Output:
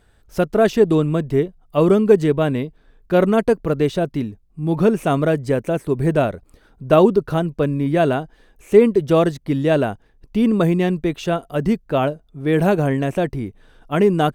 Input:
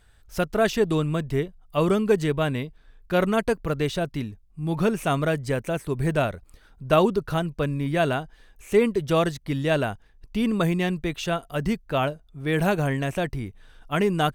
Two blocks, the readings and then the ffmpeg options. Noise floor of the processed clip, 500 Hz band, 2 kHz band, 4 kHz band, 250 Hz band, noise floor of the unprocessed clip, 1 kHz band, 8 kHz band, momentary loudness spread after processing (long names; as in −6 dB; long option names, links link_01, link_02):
−55 dBFS, +7.5 dB, +1.0 dB, −0.5 dB, +7.0 dB, −55 dBFS, +4.0 dB, can't be measured, 11 LU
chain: -af "equalizer=frequency=340:width=0.44:gain=9.5,volume=-1dB"